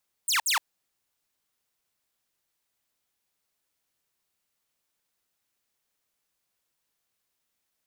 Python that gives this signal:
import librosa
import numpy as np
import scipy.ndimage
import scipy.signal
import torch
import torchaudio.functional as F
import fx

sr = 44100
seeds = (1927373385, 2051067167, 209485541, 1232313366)

y = fx.laser_zaps(sr, level_db=-19.0, start_hz=9600.0, end_hz=800.0, length_s=0.12, wave='saw', shots=2, gap_s=0.06)